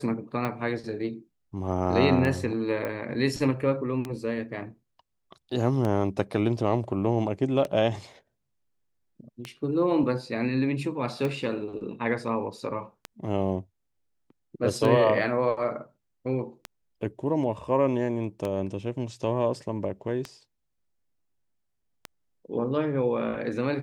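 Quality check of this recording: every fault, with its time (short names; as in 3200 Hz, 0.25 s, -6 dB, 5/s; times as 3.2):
tick 33 1/3 rpm -17 dBFS
2.85 pop -19 dBFS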